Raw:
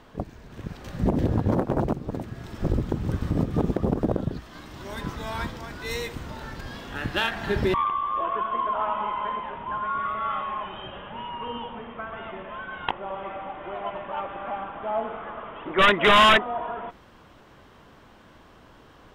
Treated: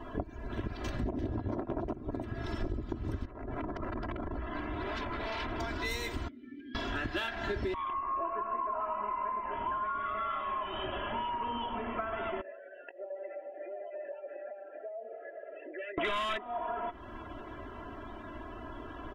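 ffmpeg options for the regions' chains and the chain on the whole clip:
ffmpeg -i in.wav -filter_complex "[0:a]asettb=1/sr,asplit=3[link_01][link_02][link_03];[link_01]atrim=end=3.254[link_04];[link_02]atrim=start=3.25:end=5.6,asetpts=PTS-STARTPTS,afade=type=in:duration=0.004:curve=qsin,afade=type=out:start_time=2.346:duration=0.004:curve=qsin,lowpass=2400,acompressor=threshold=-33dB:ratio=6:attack=3.2:release=140:knee=1:detection=peak,aeval=exprs='0.0133*(abs(mod(val(0)/0.0133+3,4)-2)-1)':channel_layout=same[link_05];[link_03]atrim=start=5.596[link_06];[link_04][link_05]acrossfade=duration=0.004:curve1=hsin:curve2=qsin[link_07];[link_07][link_06]acrossfade=duration=0.004:curve1=qsin:curve2=hsin,asettb=1/sr,asplit=3[link_08][link_09][link_10];[link_08]atrim=end=6.284[link_11];[link_09]atrim=start=6.28:end=6.75,asetpts=PTS-STARTPTS,afade=type=in:duration=0.004:curve=qsin,afade=type=out:start_time=0.466:duration=0.004:curve=qsin,acrossover=split=240|3100[link_12][link_13][link_14];[link_12]acompressor=threshold=-44dB:ratio=4[link_15];[link_13]acompressor=threshold=-42dB:ratio=4[link_16];[link_14]acompressor=threshold=-59dB:ratio=4[link_17];[link_15][link_16][link_17]amix=inputs=3:normalize=0,asplit=3[link_18][link_19][link_20];[link_18]bandpass=frequency=270:width_type=q:width=8,volume=0dB[link_21];[link_19]bandpass=frequency=2290:width_type=q:width=8,volume=-6dB[link_22];[link_20]bandpass=frequency=3010:width_type=q:width=8,volume=-9dB[link_23];[link_21][link_22][link_23]amix=inputs=3:normalize=0[link_24];[link_10]atrim=start=6.746[link_25];[link_11][link_24]acrossfade=duration=0.004:curve1=hsin:curve2=qsin[link_26];[link_26][link_25]acrossfade=duration=0.004:curve1=qsin:curve2=hsin,asettb=1/sr,asplit=3[link_27][link_28][link_29];[link_27]atrim=end=7.934[link_30];[link_28]atrim=start=7.93:end=9.52,asetpts=PTS-STARTPTS,afade=type=in:duration=0.004:curve=qsin,afade=type=out:start_time=1.586:duration=0.004:curve=qsin,asuperstop=centerf=3300:order=20:qfactor=4.7,highshelf=frequency=2500:gain=-5.5,asplit=2[link_31][link_32];[link_32]adelay=24,volume=-11dB[link_33];[link_31][link_33]amix=inputs=2:normalize=0,atrim=end_sample=70119[link_34];[link_29]atrim=start=9.516[link_35];[link_30][link_34]acrossfade=duration=0.004:curve1=hsin:curve2=qsin[link_36];[link_36][link_35]acrossfade=duration=0.004:curve1=qsin:curve2=hsin,asettb=1/sr,asplit=3[link_37][link_38][link_39];[link_37]atrim=end=12.414[link_40];[link_38]atrim=start=12.41:end=15.98,asetpts=PTS-STARTPTS,afade=type=in:duration=0.004:curve=qsin,afade=type=out:start_time=3.566:duration=0.004:curve=qsin,bass=frequency=250:gain=-1,treble=frequency=4000:gain=-14,acompressor=threshold=-35dB:ratio=8:attack=3.2:release=140:knee=1:detection=peak,asplit=3[link_41][link_42][link_43];[link_41]bandpass=frequency=530:width_type=q:width=8,volume=0dB[link_44];[link_42]bandpass=frequency=1840:width_type=q:width=8,volume=-6dB[link_45];[link_43]bandpass=frequency=2480:width_type=q:width=8,volume=-9dB[link_46];[link_44][link_45][link_46]amix=inputs=3:normalize=0[link_47];[link_39]atrim=start=15.976[link_48];[link_40][link_47]acrossfade=duration=0.004:curve1=hsin:curve2=qsin[link_49];[link_49][link_48]acrossfade=duration=0.004:curve1=qsin:curve2=hsin,aecho=1:1:3:0.71,afftdn=noise_reduction=18:noise_floor=-54,acompressor=threshold=-39dB:ratio=8,volume=6.5dB" out.wav

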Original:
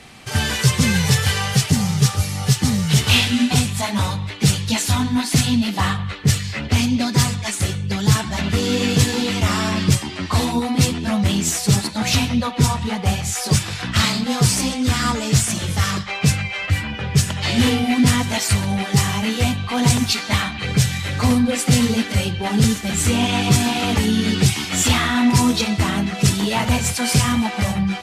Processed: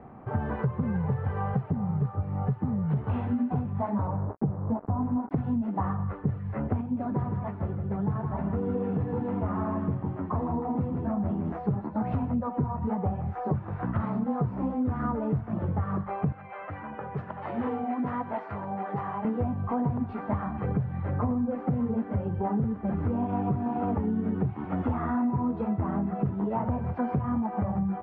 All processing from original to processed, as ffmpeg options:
ffmpeg -i in.wav -filter_complex "[0:a]asettb=1/sr,asplit=3[link_01][link_02][link_03];[link_01]atrim=end=4.074[link_04];[link_02]atrim=start=4.07:end=5.31,asetpts=PTS-STARTPTS,afade=type=in:duration=0.004:curve=qsin,afade=type=out:start_time=1.236:duration=0.004:curve=qsin,lowpass=frequency=1100:width=0.5412,lowpass=frequency=1100:width=1.3066,equalizer=frequency=680:width_type=o:width=0.73:gain=2.5,acrusher=bits=4:mix=0:aa=0.5[link_05];[link_03]atrim=start=5.306[link_06];[link_04][link_05]acrossfade=duration=0.004:curve1=hsin:curve2=qsin[link_07];[link_07][link_06]acrossfade=duration=0.004:curve1=qsin:curve2=hsin,asettb=1/sr,asplit=3[link_08][link_09][link_10];[link_08]atrim=end=6.814[link_11];[link_09]atrim=start=6.81:end=11.52,asetpts=PTS-STARTPTS,afade=type=in:duration=0.004:curve=qsin,afade=type=out:start_time=4.706:duration=0.004:curve=qsin,bandreject=frequency=60:width_type=h:width=6,bandreject=frequency=120:width_type=h:width=6,bandreject=frequency=180:width_type=h:width=6,bandreject=frequency=240:width_type=h:width=6,bandreject=frequency=300:width_type=h:width=6,bandreject=frequency=360:width_type=h:width=6,bandreject=frequency=420:width_type=h:width=6,flanger=delay=4.2:depth=6.6:regen=-74:speed=1.1:shape=sinusoidal,aecho=1:1:159:0.398,atrim=end_sample=207711[link_12];[link_10]atrim=start=11.516[link_13];[link_11][link_12]acrossfade=duration=0.004:curve1=hsin:curve2=qsin[link_14];[link_14][link_13]acrossfade=duration=0.004:curve1=qsin:curve2=hsin,asettb=1/sr,asplit=3[link_15][link_16][link_17];[link_15]atrim=end=16.324[link_18];[link_16]atrim=start=16.32:end=19.25,asetpts=PTS-STARTPTS,afade=type=in:duration=0.004:curve=qsin,afade=type=out:start_time=2.926:duration=0.004:curve=qsin,acompressor=mode=upward:threshold=-19dB:ratio=2.5:attack=3.2:release=140:knee=2.83:detection=peak,highpass=frequency=930:poles=1[link_19];[link_17]atrim=start=19.246[link_20];[link_18][link_19]acrossfade=duration=0.004:curve1=hsin:curve2=qsin[link_21];[link_21][link_20]acrossfade=duration=0.004:curve1=qsin:curve2=hsin,lowpass=frequency=1100:width=0.5412,lowpass=frequency=1100:width=1.3066,lowshelf=frequency=69:gain=-7,acompressor=threshold=-25dB:ratio=6" out.wav

